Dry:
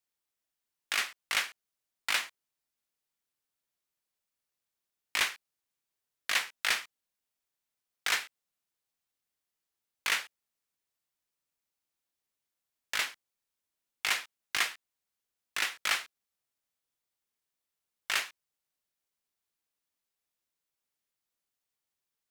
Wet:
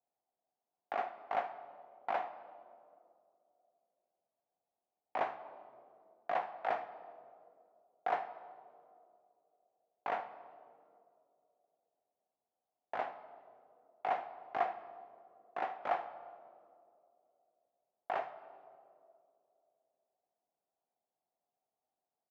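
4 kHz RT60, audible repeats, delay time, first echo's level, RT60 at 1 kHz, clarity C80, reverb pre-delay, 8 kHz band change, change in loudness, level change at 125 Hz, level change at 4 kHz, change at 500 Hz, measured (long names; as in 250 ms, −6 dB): 1.4 s, 1, 77 ms, −18.5 dB, 2.1 s, 14.0 dB, 3 ms, below −35 dB, −8.0 dB, can't be measured, −26.0 dB, +11.0 dB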